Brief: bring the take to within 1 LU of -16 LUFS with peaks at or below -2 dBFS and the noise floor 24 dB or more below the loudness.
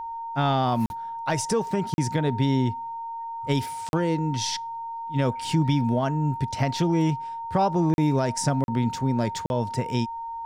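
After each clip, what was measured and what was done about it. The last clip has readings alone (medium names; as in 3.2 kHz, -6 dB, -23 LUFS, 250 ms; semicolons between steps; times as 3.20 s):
dropouts 6; longest dropout 41 ms; steady tone 920 Hz; tone level -31 dBFS; loudness -25.5 LUFS; peak level -11.5 dBFS; loudness target -16.0 LUFS
-> interpolate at 0.86/1.94/3.89/7.94/8.64/9.46 s, 41 ms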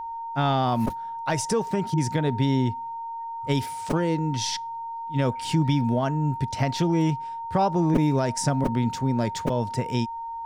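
dropouts 0; steady tone 920 Hz; tone level -31 dBFS
-> band-stop 920 Hz, Q 30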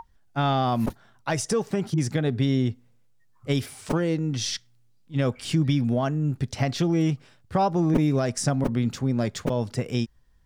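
steady tone not found; loudness -26.0 LUFS; peak level -9.0 dBFS; loudness target -16.0 LUFS
-> trim +10 dB; peak limiter -2 dBFS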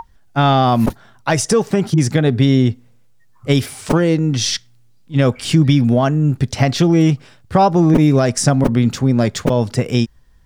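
loudness -16.0 LUFS; peak level -2.0 dBFS; noise floor -49 dBFS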